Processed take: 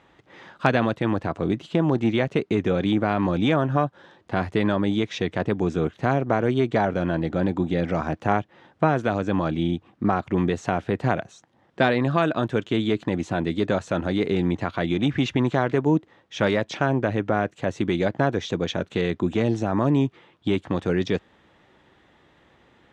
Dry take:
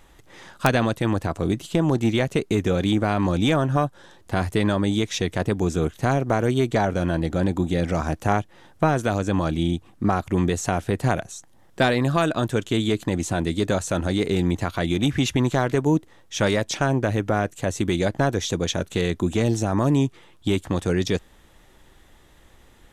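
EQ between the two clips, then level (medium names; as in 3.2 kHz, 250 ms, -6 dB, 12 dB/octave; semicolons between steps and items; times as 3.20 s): band-pass 120–3200 Hz; 0.0 dB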